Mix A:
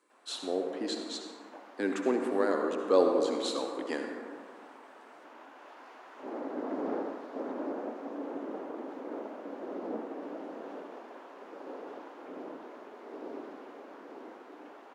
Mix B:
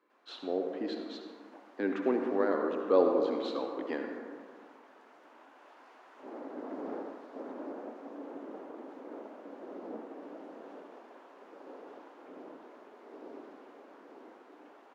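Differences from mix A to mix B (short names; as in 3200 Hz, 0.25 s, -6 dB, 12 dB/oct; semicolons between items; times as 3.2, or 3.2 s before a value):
speech: add air absorption 280 m; background -5.5 dB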